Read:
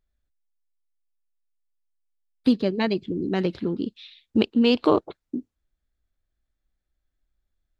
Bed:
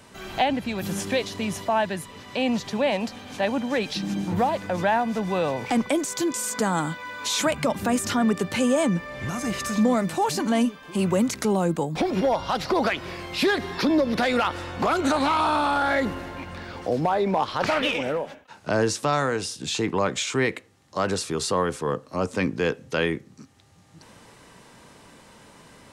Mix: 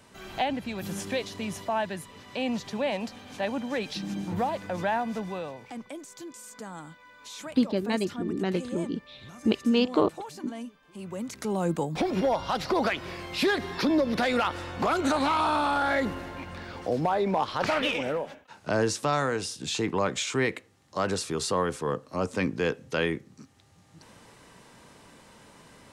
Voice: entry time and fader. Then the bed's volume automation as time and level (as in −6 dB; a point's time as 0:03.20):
5.10 s, −4.0 dB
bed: 0:05.16 −5.5 dB
0:05.68 −17 dB
0:11.02 −17 dB
0:11.70 −3 dB